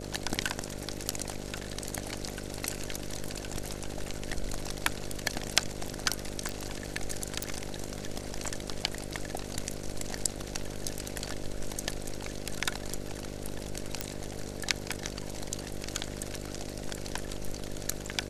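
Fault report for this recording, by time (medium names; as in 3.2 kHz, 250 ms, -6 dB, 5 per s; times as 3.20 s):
buzz 50 Hz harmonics 12 -41 dBFS
6.49 s: pop
7.43 s: pop
14.01 s: pop -13 dBFS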